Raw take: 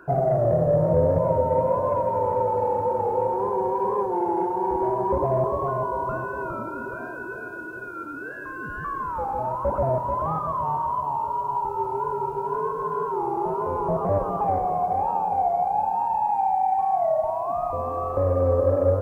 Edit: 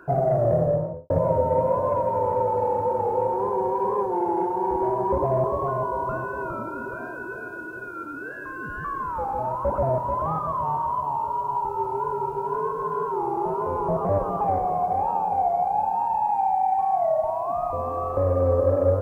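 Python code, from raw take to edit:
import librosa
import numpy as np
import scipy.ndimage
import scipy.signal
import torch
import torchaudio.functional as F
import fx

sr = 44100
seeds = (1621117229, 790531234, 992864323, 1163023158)

y = fx.studio_fade_out(x, sr, start_s=0.56, length_s=0.54)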